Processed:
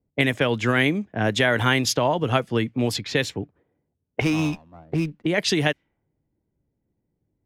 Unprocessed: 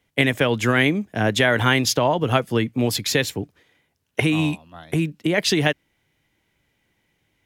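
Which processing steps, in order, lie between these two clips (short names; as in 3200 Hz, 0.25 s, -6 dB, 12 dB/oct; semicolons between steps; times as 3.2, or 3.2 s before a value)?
low-pass opened by the level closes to 420 Hz, open at -15.5 dBFS; 4.21–5.26 running maximum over 5 samples; gain -2 dB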